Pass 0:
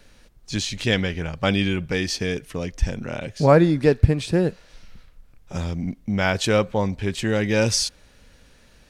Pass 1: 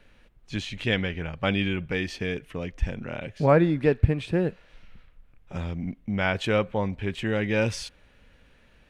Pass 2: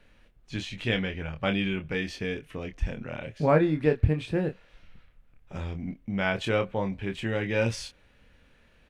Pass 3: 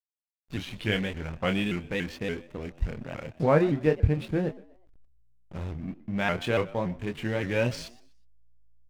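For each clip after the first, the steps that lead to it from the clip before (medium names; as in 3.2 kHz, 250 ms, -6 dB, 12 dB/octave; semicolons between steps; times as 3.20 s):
resonant high shelf 3.8 kHz -9 dB, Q 1.5; trim -4.5 dB
doubling 26 ms -7 dB; trim -3 dB
hysteresis with a dead band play -37.5 dBFS; frequency-shifting echo 123 ms, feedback 32%, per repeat +56 Hz, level -20 dB; vibrato with a chosen wave saw up 3.5 Hz, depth 160 cents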